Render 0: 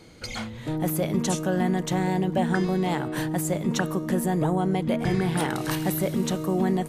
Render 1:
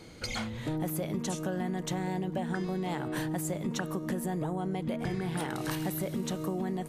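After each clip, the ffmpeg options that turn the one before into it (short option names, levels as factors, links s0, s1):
-af "acompressor=threshold=0.0316:ratio=6"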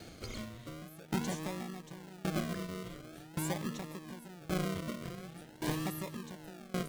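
-filter_complex "[0:a]acrossover=split=1900[s0][s1];[s0]acrusher=samples=41:mix=1:aa=0.000001:lfo=1:lforange=24.6:lforate=0.46[s2];[s1]alimiter=level_in=2.66:limit=0.0631:level=0:latency=1:release=167,volume=0.376[s3];[s2][s3]amix=inputs=2:normalize=0,aeval=exprs='val(0)*pow(10,-22*if(lt(mod(0.89*n/s,1),2*abs(0.89)/1000),1-mod(0.89*n/s,1)/(2*abs(0.89)/1000),(mod(0.89*n/s,1)-2*abs(0.89)/1000)/(1-2*abs(0.89)/1000))/20)':c=same,volume=1.12"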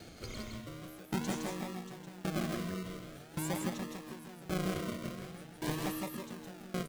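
-af "aecho=1:1:163:0.668,volume=0.891"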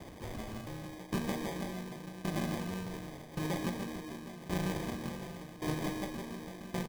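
-filter_complex "[0:a]asplit=2[s0][s1];[s1]aeval=exprs='(mod(84.1*val(0)+1,2)-1)/84.1':c=same,volume=0.376[s2];[s0][s2]amix=inputs=2:normalize=0,acrusher=samples=32:mix=1:aa=0.000001,asplit=2[s3][s4];[s4]adelay=39,volume=0.251[s5];[s3][s5]amix=inputs=2:normalize=0"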